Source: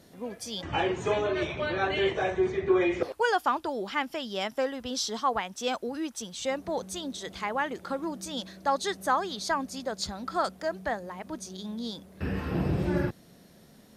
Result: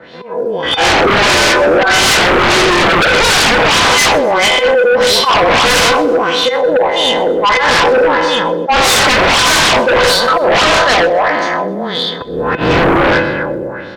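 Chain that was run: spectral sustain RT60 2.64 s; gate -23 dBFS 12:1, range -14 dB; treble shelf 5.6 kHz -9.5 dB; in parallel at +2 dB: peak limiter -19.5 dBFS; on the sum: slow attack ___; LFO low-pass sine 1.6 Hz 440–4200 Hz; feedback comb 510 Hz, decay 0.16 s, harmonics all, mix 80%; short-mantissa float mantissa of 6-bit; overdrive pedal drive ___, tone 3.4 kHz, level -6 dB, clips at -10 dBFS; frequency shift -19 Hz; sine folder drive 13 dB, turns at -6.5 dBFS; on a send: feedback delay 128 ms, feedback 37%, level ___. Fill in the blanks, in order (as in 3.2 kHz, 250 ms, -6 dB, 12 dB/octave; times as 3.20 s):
282 ms, 29 dB, -20.5 dB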